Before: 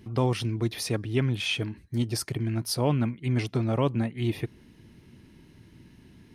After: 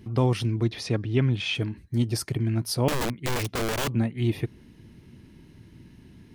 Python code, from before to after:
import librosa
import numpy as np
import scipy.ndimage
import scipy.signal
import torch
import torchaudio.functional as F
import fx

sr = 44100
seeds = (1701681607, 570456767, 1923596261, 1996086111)

y = fx.lowpass(x, sr, hz=5800.0, slope=12, at=(0.63, 1.55))
y = fx.overflow_wrap(y, sr, gain_db=23.0, at=(2.88, 3.93))
y = fx.low_shelf(y, sr, hz=320.0, db=4.0)